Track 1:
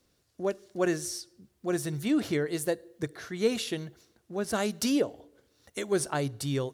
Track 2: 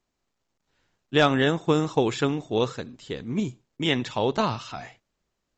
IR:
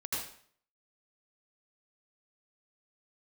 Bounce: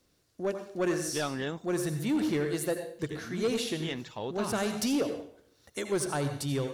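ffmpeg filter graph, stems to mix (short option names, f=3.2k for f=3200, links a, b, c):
-filter_complex "[0:a]volume=-1.5dB,asplit=2[a][b];[b]volume=-9dB[c];[1:a]volume=-11.5dB,asplit=3[d][e][f];[d]atrim=end=1.68,asetpts=PTS-STARTPTS,afade=t=out:st=1.676:d=0.004:c=hsin[g];[e]atrim=start=1.68:end=2.97,asetpts=PTS-STARTPTS,volume=0[h];[f]atrim=start=2.97,asetpts=PTS-STARTPTS,afade=t=in:d=0.004:c=hsin[i];[g][h][i]concat=n=3:v=0:a=1[j];[2:a]atrim=start_sample=2205[k];[c][k]afir=irnorm=-1:irlink=0[l];[a][j][l]amix=inputs=3:normalize=0,asoftclip=type=tanh:threshold=-22dB"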